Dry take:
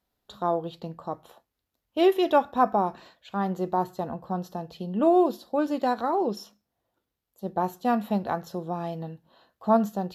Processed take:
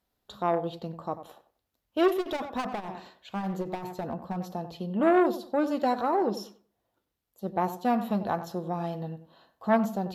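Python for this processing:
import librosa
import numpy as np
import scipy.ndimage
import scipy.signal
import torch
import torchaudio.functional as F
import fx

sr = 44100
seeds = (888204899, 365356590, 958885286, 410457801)

y = fx.overload_stage(x, sr, gain_db=25.0, at=(2.07, 4.36), fade=0.02)
y = fx.echo_tape(y, sr, ms=93, feedback_pct=27, wet_db=-11, lp_hz=1500.0, drive_db=14.0, wow_cents=9)
y = fx.transformer_sat(y, sr, knee_hz=720.0)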